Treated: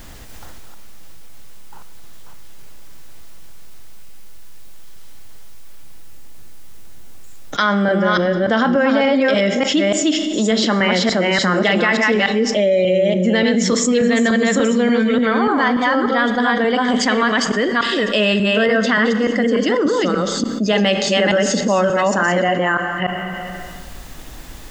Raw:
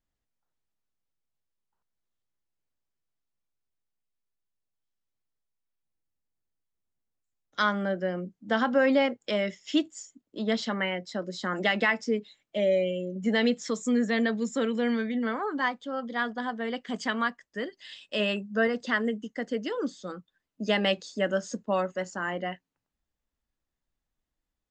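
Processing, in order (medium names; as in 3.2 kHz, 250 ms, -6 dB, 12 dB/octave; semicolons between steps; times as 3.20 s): chunks repeated in reverse 292 ms, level -2 dB; peak limiter -16 dBFS, peak gain reduction 6.5 dB; Schroeder reverb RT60 1.2 s, combs from 29 ms, DRR 13.5 dB; level flattener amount 70%; trim +7.5 dB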